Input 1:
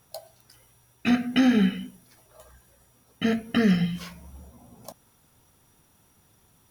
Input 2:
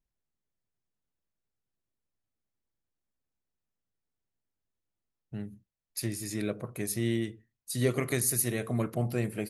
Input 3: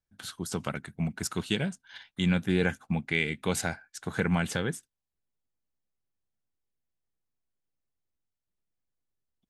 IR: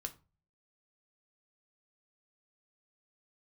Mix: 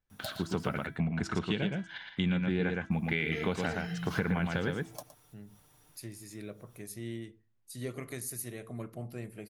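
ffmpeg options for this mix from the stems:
-filter_complex "[0:a]equalizer=f=210:w=2.7:g=-9,aecho=1:1:6.7:0.51,acompressor=threshold=-31dB:ratio=6,adelay=100,volume=-2.5dB,asplit=3[a][b][c];[a]atrim=end=0.87,asetpts=PTS-STARTPTS,afade=t=out:st=0.866:d=0.004:c=hsin[d];[b]atrim=start=0.87:end=2.91,asetpts=PTS-STARTPTS,volume=0[e];[c]atrim=start=2.91,asetpts=PTS-STARTPTS,afade=t=in:d=0.004:c=hsin[f];[d][e][f]concat=n=3:v=0:a=1,asplit=2[g][h];[h]volume=-13.5dB[i];[1:a]volume=-14dB,asplit=3[j][k][l];[k]volume=-4.5dB[m];[2:a]lowpass=3.2k,bandreject=f=329.2:t=h:w=4,bandreject=f=658.4:t=h:w=4,bandreject=f=987.6:t=h:w=4,bandreject=f=1.3168k:t=h:w=4,bandreject=f=1.646k:t=h:w=4,bandreject=f=1.9752k:t=h:w=4,bandreject=f=2.3044k:t=h:w=4,bandreject=f=2.6336k:t=h:w=4,bandreject=f=2.9628k:t=h:w=4,bandreject=f=3.292k:t=h:w=4,bandreject=f=3.6212k:t=h:w=4,bandreject=f=3.9504k:t=h:w=4,bandreject=f=4.2796k:t=h:w=4,bandreject=f=4.6088k:t=h:w=4,bandreject=f=4.938k:t=h:w=4,bandreject=f=5.2672k:t=h:w=4,bandreject=f=5.5964k:t=h:w=4,bandreject=f=5.9256k:t=h:w=4,bandreject=f=6.2548k:t=h:w=4,bandreject=f=6.584k:t=h:w=4,bandreject=f=6.9132k:t=h:w=4,bandreject=f=7.2424k:t=h:w=4,bandreject=f=7.5716k:t=h:w=4,bandreject=f=7.9008k:t=h:w=4,bandreject=f=8.23k:t=h:w=4,bandreject=f=8.5592k:t=h:w=4,bandreject=f=8.8884k:t=h:w=4,bandreject=f=9.2176k:t=h:w=4,bandreject=f=9.5468k:t=h:w=4,bandreject=f=9.876k:t=h:w=4,bandreject=f=10.2052k:t=h:w=4,volume=2dB,asplit=3[n][o][p];[o]volume=-8dB[q];[p]volume=-3dB[r];[l]apad=whole_len=300220[s];[g][s]sidechaincompress=threshold=-57dB:ratio=8:attack=16:release=114[t];[3:a]atrim=start_sample=2205[u];[m][q]amix=inputs=2:normalize=0[v];[v][u]afir=irnorm=-1:irlink=0[w];[i][r]amix=inputs=2:normalize=0,aecho=0:1:116:1[x];[t][j][n][w][x]amix=inputs=5:normalize=0,acompressor=threshold=-28dB:ratio=4"

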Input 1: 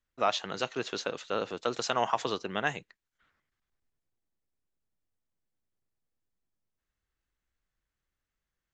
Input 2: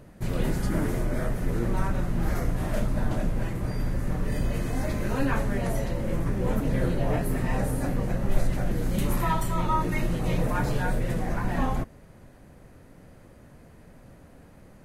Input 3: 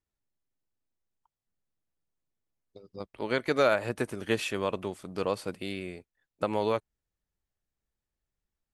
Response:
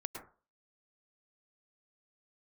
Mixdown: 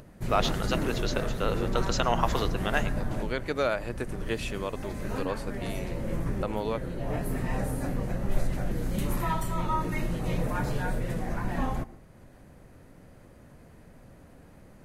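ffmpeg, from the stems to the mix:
-filter_complex "[0:a]adelay=100,volume=-1dB,asplit=2[a][b];[b]volume=-6.5dB[c];[1:a]acompressor=mode=upward:threshold=-43dB:ratio=2.5,volume=-4.5dB,asplit=2[d][e];[e]volume=-13dB[f];[2:a]volume=-3.5dB,asplit=2[g][h];[h]apad=whole_len=654655[i];[d][i]sidechaincompress=threshold=-34dB:ratio=8:attack=9.2:release=622[j];[3:a]atrim=start_sample=2205[k];[c][f]amix=inputs=2:normalize=0[l];[l][k]afir=irnorm=-1:irlink=0[m];[a][j][g][m]amix=inputs=4:normalize=0"

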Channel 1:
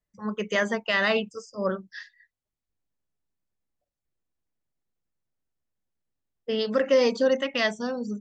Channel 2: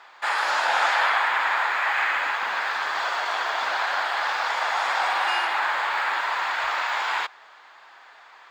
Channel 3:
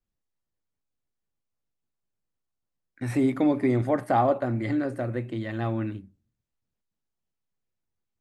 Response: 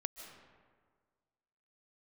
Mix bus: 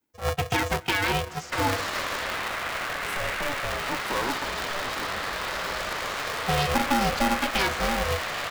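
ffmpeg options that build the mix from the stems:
-filter_complex "[0:a]acrossover=split=170[a][b];[b]acompressor=threshold=-26dB:ratio=6[c];[a][c]amix=inputs=2:normalize=0,volume=2.5dB,asplit=2[d][e];[e]volume=-11.5dB[f];[1:a]highshelf=f=3.9k:g=8.5,acompressor=threshold=-31dB:ratio=6,adelay=1300,volume=2.5dB[g];[2:a]aemphasis=mode=production:type=bsi,volume=-7dB[h];[3:a]atrim=start_sample=2205[i];[f][i]afir=irnorm=-1:irlink=0[j];[d][g][h][j]amix=inputs=4:normalize=0,aeval=exprs='val(0)*sgn(sin(2*PI*290*n/s))':c=same"

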